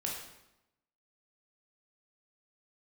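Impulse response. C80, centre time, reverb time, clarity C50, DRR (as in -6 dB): 5.5 dB, 49 ms, 0.90 s, 2.5 dB, -2.5 dB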